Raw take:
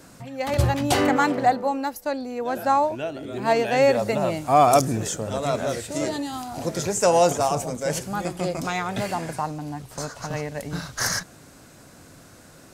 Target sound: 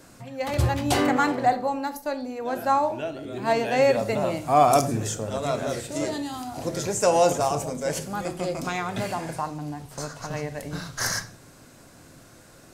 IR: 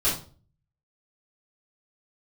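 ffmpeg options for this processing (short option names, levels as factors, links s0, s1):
-filter_complex "[0:a]asplit=2[s0][s1];[1:a]atrim=start_sample=2205,asetrate=37926,aresample=44100[s2];[s1][s2]afir=irnorm=-1:irlink=0,volume=0.0841[s3];[s0][s3]amix=inputs=2:normalize=0,volume=0.708"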